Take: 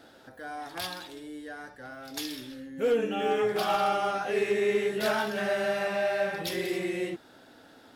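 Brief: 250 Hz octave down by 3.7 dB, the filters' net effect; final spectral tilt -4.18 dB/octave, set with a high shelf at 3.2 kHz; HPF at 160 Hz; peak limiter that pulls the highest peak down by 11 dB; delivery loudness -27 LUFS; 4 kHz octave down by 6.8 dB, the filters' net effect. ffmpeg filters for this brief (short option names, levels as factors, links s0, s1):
-af "highpass=160,equalizer=f=250:t=o:g=-4.5,highshelf=f=3200:g=-3.5,equalizer=f=4000:t=o:g=-6.5,volume=3.16,alimiter=limit=0.126:level=0:latency=1"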